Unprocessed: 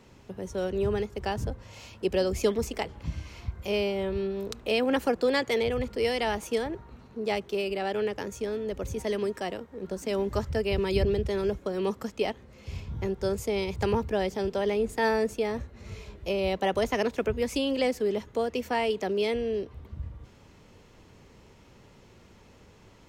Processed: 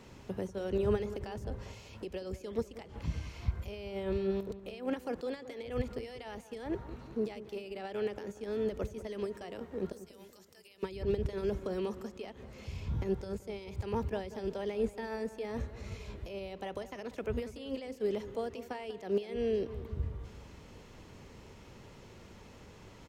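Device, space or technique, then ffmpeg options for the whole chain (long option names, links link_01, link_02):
de-esser from a sidechain: -filter_complex "[0:a]asplit=2[link_01][link_02];[link_02]highpass=5900,apad=whole_len=1017986[link_03];[link_01][link_03]sidechaincompress=threshold=-59dB:ratio=16:attack=1.1:release=93,asettb=1/sr,asplit=3[link_04][link_05][link_06];[link_04]atrim=end=9.924[link_07];[link_05]atrim=start=9.92:end=10.83,asetpts=PTS-STARTPTS,afade=type=in:duration=0.004:curve=qsin,afade=type=out:start_time=0.906:duration=0.004:curve=qsin,aderivative[link_08];[link_06]atrim=start=10.826[link_09];[link_07][link_08]acrossfade=duration=0.004:curve1=hsin:curve2=qsin[link_10];[link_10][link_09]acrossfade=duration=0.004:curve1=qsin:curve2=hsin,asplit=2[link_11][link_12];[link_12]adelay=190,lowpass=frequency=2100:poles=1,volume=-14dB,asplit=2[link_13][link_14];[link_14]adelay=190,lowpass=frequency=2100:poles=1,volume=0.53,asplit=2[link_15][link_16];[link_16]adelay=190,lowpass=frequency=2100:poles=1,volume=0.53,asplit=2[link_17][link_18];[link_18]adelay=190,lowpass=frequency=2100:poles=1,volume=0.53,asplit=2[link_19][link_20];[link_20]adelay=190,lowpass=frequency=2100:poles=1,volume=0.53[link_21];[link_11][link_13][link_15][link_17][link_19][link_21]amix=inputs=6:normalize=0,volume=1.5dB"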